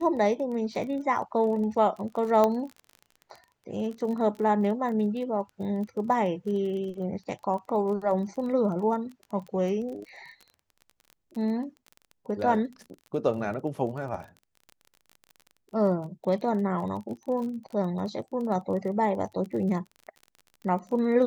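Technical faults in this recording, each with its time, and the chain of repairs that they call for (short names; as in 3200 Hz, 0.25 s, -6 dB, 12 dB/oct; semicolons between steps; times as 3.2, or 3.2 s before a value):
crackle 29/s -36 dBFS
2.44 pop -12 dBFS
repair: de-click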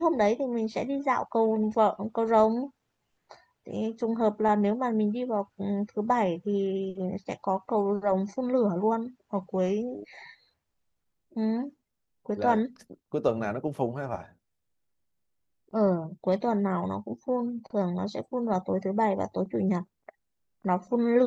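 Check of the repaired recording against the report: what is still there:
2.44 pop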